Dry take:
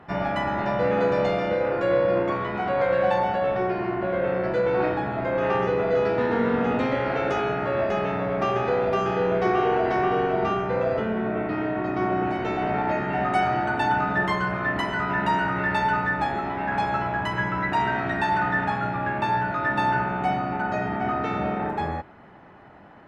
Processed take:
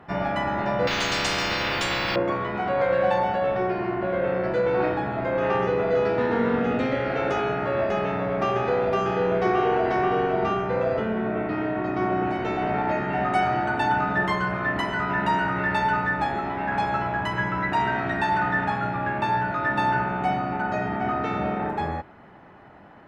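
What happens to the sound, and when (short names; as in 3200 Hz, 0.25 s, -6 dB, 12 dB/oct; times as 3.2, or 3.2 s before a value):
0.87–2.16 spectral compressor 10:1
6.59–7.18 bell 970 Hz -11.5 dB 0.26 oct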